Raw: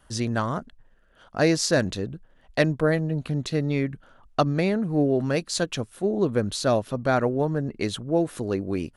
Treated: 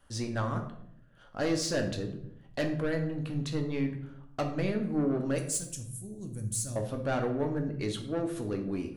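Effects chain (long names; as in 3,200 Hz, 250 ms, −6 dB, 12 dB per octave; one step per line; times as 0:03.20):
0:05.38–0:06.76: drawn EQ curve 120 Hz 0 dB, 450 Hz −22 dB, 990 Hz −24 dB, 4,000 Hz −14 dB, 7,700 Hz +13 dB
soft clipping −18.5 dBFS, distortion −13 dB
convolution reverb RT60 0.70 s, pre-delay 4 ms, DRR 3 dB
level −7 dB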